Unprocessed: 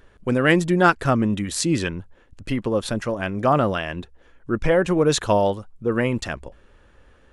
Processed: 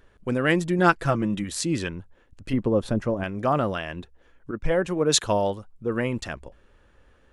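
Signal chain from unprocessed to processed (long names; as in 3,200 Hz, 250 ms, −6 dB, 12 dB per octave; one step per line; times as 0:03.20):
0:00.78–0:01.44: comb filter 6 ms, depth 56%
0:02.53–0:03.24: tilt shelving filter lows +6.5 dB, about 1,100 Hz
0:04.51–0:05.23: multiband upward and downward expander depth 100%
level −4.5 dB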